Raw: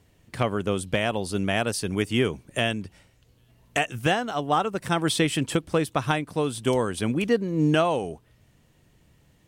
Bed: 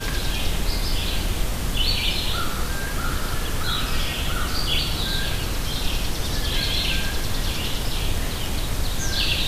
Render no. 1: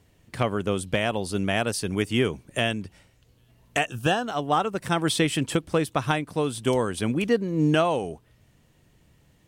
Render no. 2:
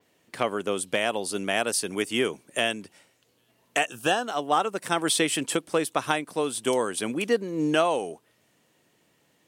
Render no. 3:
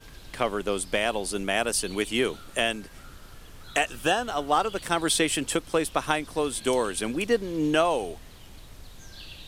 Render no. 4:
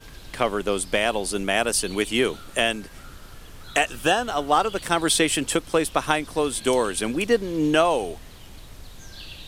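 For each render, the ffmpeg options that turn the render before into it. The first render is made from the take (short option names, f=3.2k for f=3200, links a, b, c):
-filter_complex "[0:a]asettb=1/sr,asplit=3[a][b][c];[a]atrim=end=3.874[d];[b]atrim=start=3.87:end=4.27,asetpts=PTS-STARTPTS,afade=t=in:d=0.004:c=qsin,afade=t=out:st=0.396:d=0.004:c=qsin,asuperstop=centerf=2100:order=4:qfactor=3.3[e];[c]atrim=start=4.266[f];[d][e]acrossfade=d=0.004:c1=hsin:c2=qsin[g];[g][f]acrossfade=d=0.004:c1=qsin:c2=hsin"
-af "highpass=290,adynamicequalizer=threshold=0.00447:dfrequency=9600:dqfactor=0.78:tfrequency=9600:tqfactor=0.78:attack=5:release=100:ratio=0.375:range=3:mode=boostabove:tftype=bell"
-filter_complex "[1:a]volume=-21.5dB[a];[0:a][a]amix=inputs=2:normalize=0"
-af "volume=3.5dB"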